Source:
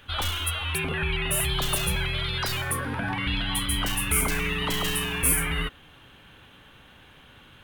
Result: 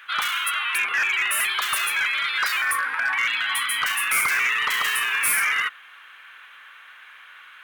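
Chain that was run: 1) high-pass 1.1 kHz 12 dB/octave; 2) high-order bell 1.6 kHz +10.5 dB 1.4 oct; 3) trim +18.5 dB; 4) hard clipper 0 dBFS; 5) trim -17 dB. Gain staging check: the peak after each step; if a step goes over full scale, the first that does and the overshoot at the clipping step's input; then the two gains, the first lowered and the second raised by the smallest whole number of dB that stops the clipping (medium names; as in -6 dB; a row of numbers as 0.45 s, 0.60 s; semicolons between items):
-10.5 dBFS, -9.0 dBFS, +9.5 dBFS, 0.0 dBFS, -17.0 dBFS; step 3, 9.5 dB; step 3 +8.5 dB, step 5 -7 dB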